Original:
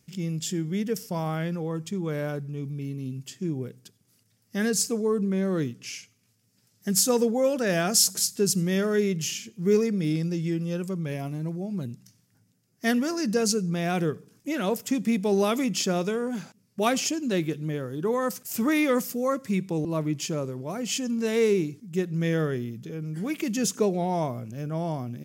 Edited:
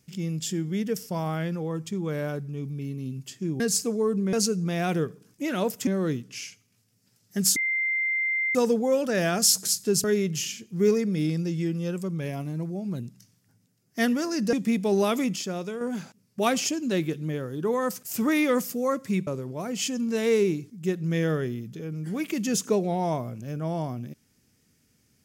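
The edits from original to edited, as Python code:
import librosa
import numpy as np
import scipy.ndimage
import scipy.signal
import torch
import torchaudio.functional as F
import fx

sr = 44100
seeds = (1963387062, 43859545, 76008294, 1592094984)

y = fx.edit(x, sr, fx.cut(start_s=3.6, length_s=1.05),
    fx.insert_tone(at_s=7.07, length_s=0.99, hz=2090.0, db=-23.0),
    fx.cut(start_s=8.56, length_s=0.34),
    fx.move(start_s=13.39, length_s=1.54, to_s=5.38),
    fx.clip_gain(start_s=15.76, length_s=0.45, db=-6.0),
    fx.cut(start_s=19.67, length_s=0.7), tone=tone)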